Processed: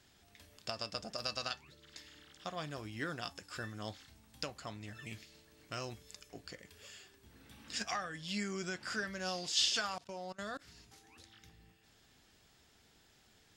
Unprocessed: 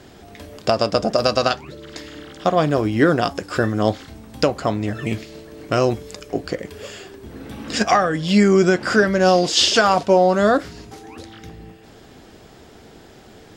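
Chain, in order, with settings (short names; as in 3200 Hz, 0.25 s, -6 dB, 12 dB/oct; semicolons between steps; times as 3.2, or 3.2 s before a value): resonator 880 Hz, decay 0.15 s, harmonics all, mix 50%; 9.86–10.68 level quantiser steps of 23 dB; passive tone stack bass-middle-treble 5-5-5; gain -2 dB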